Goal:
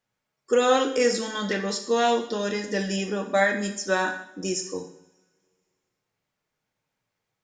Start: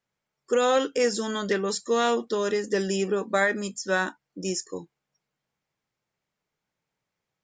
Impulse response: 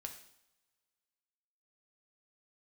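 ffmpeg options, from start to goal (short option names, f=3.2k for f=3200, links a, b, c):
-filter_complex "[0:a]asettb=1/sr,asplit=3[a][b][c];[a]atrim=end=1.164[d];[b]atrim=start=1.16:end=3.61,asetpts=PTS-STARTPTS,afade=t=in:d=0.004:c=qsin,afade=t=out:st=2.446:d=0.004:c=qsin,equalizer=f=400:t=o:w=0.33:g=-7,equalizer=f=1.25k:t=o:w=0.33:g=-6,equalizer=f=8k:t=o:w=0.33:g=-7[e];[c]atrim=start=3.606[f];[d][e]acrossfade=d=0.004:c1=hsin:c2=qsin[g];[g][f]acrossfade=d=0.004:c1=qsin:c2=hsin[h];[1:a]atrim=start_sample=2205[i];[h][i]afir=irnorm=-1:irlink=0,volume=6dB"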